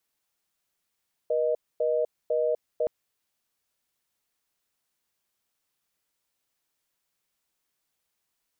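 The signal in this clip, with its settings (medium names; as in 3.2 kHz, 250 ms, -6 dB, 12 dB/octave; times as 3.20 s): call progress tone reorder tone, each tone -25 dBFS 1.57 s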